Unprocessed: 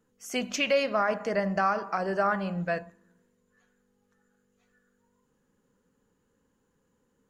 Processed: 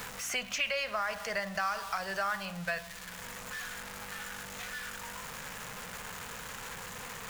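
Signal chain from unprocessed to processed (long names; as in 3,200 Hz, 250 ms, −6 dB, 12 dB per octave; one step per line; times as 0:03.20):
converter with a step at zero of −41.5 dBFS
guitar amp tone stack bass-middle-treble 10-0-10
in parallel at +0.5 dB: brickwall limiter −28 dBFS, peak gain reduction 9.5 dB
on the sum: mains hum 60 Hz, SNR 31 dB
multiband upward and downward compressor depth 70%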